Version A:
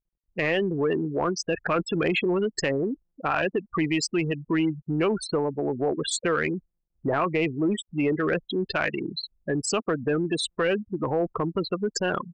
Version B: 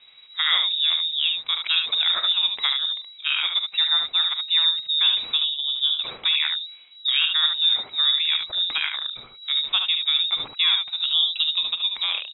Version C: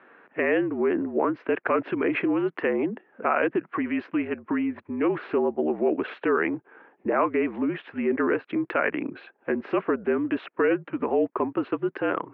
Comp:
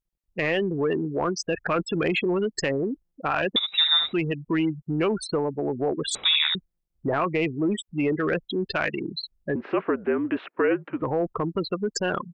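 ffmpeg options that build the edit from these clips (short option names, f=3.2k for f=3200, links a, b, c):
-filter_complex "[1:a]asplit=2[a][b];[0:a]asplit=4[c][d][e][f];[c]atrim=end=3.562[g];[a]atrim=start=3.558:end=4.132[h];[d]atrim=start=4.128:end=6.152[i];[b]atrim=start=6.148:end=6.552[j];[e]atrim=start=6.548:end=9.562[k];[2:a]atrim=start=9.558:end=11.022[l];[f]atrim=start=11.018[m];[g][h]acrossfade=d=0.004:c1=hsin:c2=hsin[n];[n][i]acrossfade=d=0.004:c1=hsin:c2=hsin[o];[o][j]acrossfade=d=0.004:c1=hsin:c2=hsin[p];[p][k]acrossfade=d=0.004:c1=hsin:c2=hsin[q];[q][l]acrossfade=d=0.004:c1=hsin:c2=hsin[r];[r][m]acrossfade=d=0.004:c1=hsin:c2=hsin"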